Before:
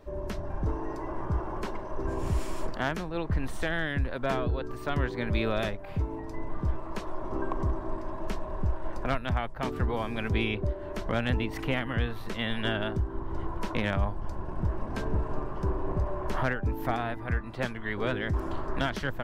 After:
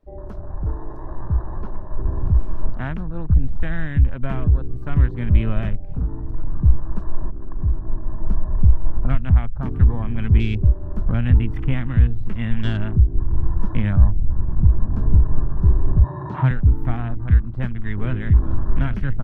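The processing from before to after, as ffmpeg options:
-filter_complex "[0:a]asettb=1/sr,asplit=3[a][b][c];[a]atrim=end=1.464[d];[b]atrim=start=1.46:end=4.26,asetpts=PTS-STARTPTS,afade=t=in:d=0.004:c=qsin,afade=t=out:st=2.796:d=0.004:c=qsin,lowpass=5k[e];[c]atrim=start=4.256[f];[d][e]acrossfade=d=0.004:c1=hsin:c2=qsin[g];[g][f]acrossfade=d=0.004:c1=qsin:c2=hsin,asettb=1/sr,asplit=3[h][i][j];[h]atrim=end=5.884[k];[i]atrim=start=5.88:end=6.63,asetpts=PTS-STARTPTS,afade=t=in:d=0.004:c=qsin,afade=t=out:st=0.746:d=0.004:c=qsin,aeval=exprs='0.0398*(abs(mod(val(0)/0.0398+3,4)-2)-1)':c=same[l];[j]atrim=start=6.626[m];[k][l]acrossfade=d=0.004:c1=hsin:c2=qsin[n];[n][m]acrossfade=d=0.004:c1=qsin:c2=hsin,asettb=1/sr,asplit=3[o][p][q];[o]atrim=end=16.044[r];[p]atrim=start=16.04:end=16.51,asetpts=PTS-STARTPTS,afade=t=in:d=0.004:c=qsin,afade=t=out:st=0.466:d=0.004:c=qsin,highpass=f=120:w=0.5412,highpass=f=120:w=1.3066,equalizer=f=130:t=q:w=4:g=8,equalizer=f=220:t=q:w=4:g=-7,equalizer=f=310:t=q:w=4:g=5,equalizer=f=940:t=q:w=4:g=10,equalizer=f=2.6k:t=q:w=4:g=3,equalizer=f=3.8k:t=q:w=4:g=9,lowpass=f=7.3k:w=0.5412,lowpass=f=7.3k:w=1.3066[s];[q]atrim=start=16.506[t];[r][s]acrossfade=d=0.004:c1=hsin:c2=qsin[u];[u][t]acrossfade=d=0.004:c1=qsin:c2=hsin,asplit=2[v][w];[w]afade=t=in:st=17.76:d=0.01,afade=t=out:st=18.23:d=0.01,aecho=0:1:410|820|1230|1640|2050|2460|2870|3280|3690|4100|4510|4920:0.266073|0.226162|0.192237|0.163402|0.138892|0.118058|0.100349|0.0852967|0.0725022|0.0616269|0.0523829|0.0445254[x];[v][x]amix=inputs=2:normalize=0,asplit=2[y][z];[y]atrim=end=7.31,asetpts=PTS-STARTPTS,afade=t=out:st=7.306:d=0.004:c=hsin:silence=0.237137[aa];[z]atrim=start=7.31,asetpts=PTS-STARTPTS,afade=t=in:d=1.03:silence=0.237137[ab];[aa][ab]concat=n=2:v=0:a=1,afwtdn=0.0126,asubboost=boost=8:cutoff=170,volume=-1dB"

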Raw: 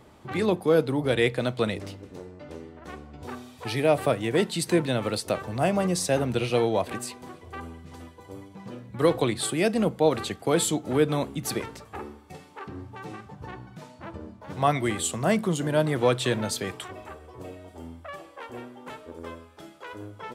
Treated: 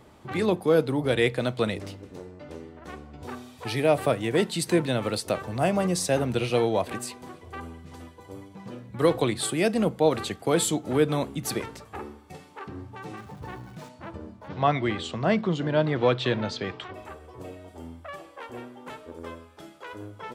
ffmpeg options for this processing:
-filter_complex "[0:a]asettb=1/sr,asplit=3[a][b][c];[a]atrim=end=13.174[d];[b]atrim=start=13.17:end=13.89,asetpts=PTS-STARTPTS,afade=t=in:d=0.004:c=qsin,afade=t=out:st=0.716:d=0.004:c=qsin,aeval=exprs='val(0)+0.5*0.00355*sgn(val(0))':c=same[e];[c]atrim=start=13.886[f];[d][e]acrossfade=d=0.004:c1=hsin:c2=qsin[g];[g][f]acrossfade=d=0.004:c1=qsin:c2=hsin,asettb=1/sr,asplit=3[h][i][j];[h]atrim=end=14.484[k];[i]atrim=start=14.48:end=16.94,asetpts=PTS-STARTPTS,afade=t=in:d=0.004:c=qsin,afade=t=out:st=2.456:d=0.004:c=qsin,lowpass=f=4.8k:w=0.5412,lowpass=f=4.8k:w=1.3066[l];[j]atrim=start=16.936[m];[k][l]acrossfade=d=0.004:c1=hsin:c2=qsin[n];[n][m]acrossfade=d=0.004:c1=qsin:c2=hsin"

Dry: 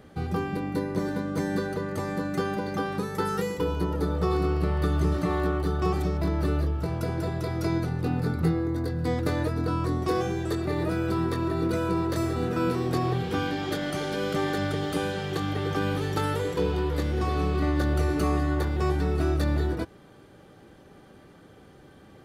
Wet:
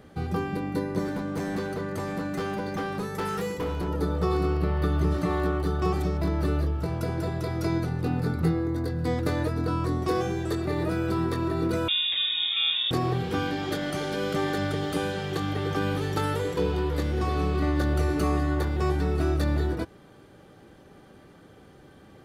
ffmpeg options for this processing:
-filter_complex "[0:a]asettb=1/sr,asplit=3[a][b][c];[a]atrim=end=1.044[d];[b]atrim=start=1.04:end=3.88,asetpts=PTS-STARTPTS,afade=t=in:d=0.004:c=qsin,afade=t=out:st=2.836:d=0.004:c=qsin,asoftclip=type=hard:threshold=-26dB[e];[c]atrim=start=3.876[f];[d][e]acrossfade=d=0.004:c1=hsin:c2=qsin[g];[g][f]acrossfade=d=0.004:c1=qsin:c2=hsin,asettb=1/sr,asplit=3[h][i][j];[h]atrim=end=4.574[k];[i]atrim=start=4.57:end=5.11,asetpts=PTS-STARTPTS,afade=t=in:d=0.004:c=qsin,afade=t=out:st=0.536:d=0.004:c=qsin,equalizer=f=7.8k:t=o:w=1.1:g=-6.5[l];[j]atrim=start=5.106[m];[k][l]acrossfade=d=0.004:c1=hsin:c2=qsin[n];[n][m]acrossfade=d=0.004:c1=qsin:c2=hsin,asettb=1/sr,asplit=3[o][p][q];[o]atrim=end=11.884[r];[p]atrim=start=11.88:end=12.91,asetpts=PTS-STARTPTS,afade=t=in:d=0.004:c=qsin,afade=t=out:st=1.026:d=0.004:c=qsin,lowpass=f=3.2k:t=q:w=0.5098,lowpass=f=3.2k:t=q:w=0.6013,lowpass=f=3.2k:t=q:w=0.9,lowpass=f=3.2k:t=q:w=2.563,afreqshift=-3800[s];[q]atrim=start=12.906[t];[r][s]acrossfade=d=0.004:c1=hsin:c2=qsin[u];[u][t]acrossfade=d=0.004:c1=qsin:c2=hsin"

